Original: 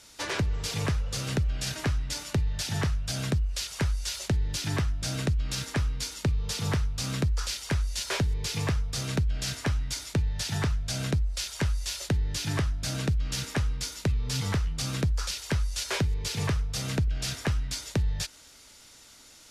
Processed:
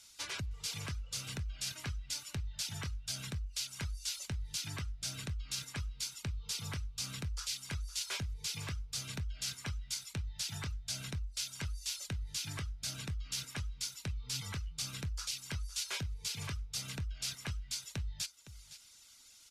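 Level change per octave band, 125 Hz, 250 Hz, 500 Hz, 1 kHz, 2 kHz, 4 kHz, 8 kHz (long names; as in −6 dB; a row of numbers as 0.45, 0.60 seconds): −13.5, −15.5, −18.5, −13.0, −9.5, −5.5, −5.0 decibels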